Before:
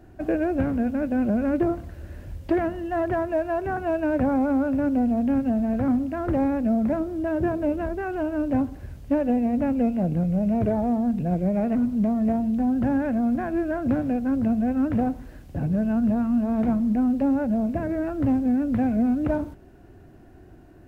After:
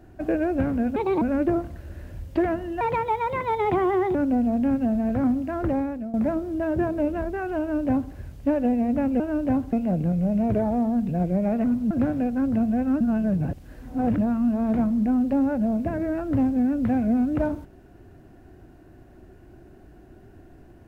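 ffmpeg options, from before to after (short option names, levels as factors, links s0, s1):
-filter_complex "[0:a]asplit=11[s0][s1][s2][s3][s4][s5][s6][s7][s8][s9][s10];[s0]atrim=end=0.964[s11];[s1]atrim=start=0.96:end=1.35,asetpts=PTS-STARTPTS,asetrate=67032,aresample=44100,atrim=end_sample=11315,asetpts=PTS-STARTPTS[s12];[s2]atrim=start=1.346:end=2.944[s13];[s3]atrim=start=2.94:end=4.79,asetpts=PTS-STARTPTS,asetrate=60858,aresample=44100[s14];[s4]atrim=start=4.786:end=6.78,asetpts=PTS-STARTPTS,afade=t=out:st=1.484:d=0.51:silence=0.16788[s15];[s5]atrim=start=6.78:end=9.842,asetpts=PTS-STARTPTS,afade=t=in:d=0.004:c=hsin:silence=0.16788[s16];[s6]atrim=start=8.238:end=8.772[s17];[s7]atrim=start=9.838:end=12.022[s18];[s8]atrim=start=13.798:end=14.902[s19];[s9]atrim=start=14.898:end=16.072,asetpts=PTS-STARTPTS,areverse[s20];[s10]atrim=start=16.068[s21];[s11][s12]acrossfade=d=0.004:c1=hsin:c2=hsin[s22];[s22][s13]acrossfade=d=0.004:c1=hsin:c2=hsin[s23];[s23][s14]acrossfade=d=0.004:c1=hsin:c2=hsin[s24];[s15][s16]concat=n=2:v=0:a=1[s25];[s24][s25]acrossfade=d=0.004:c1=hsin:c2=hsin[s26];[s26][s17]acrossfade=d=0.004:c1=hsin:c2=hsin[s27];[s27][s18]acrossfade=d=0.004:c1=hsin:c2=hsin[s28];[s28][s19]acrossfade=d=0.004:c1=hsin:c2=hsin[s29];[s29][s20]acrossfade=d=0.004:c1=hsin:c2=hsin[s30];[s30][s21]acrossfade=d=0.004:c1=hsin:c2=hsin"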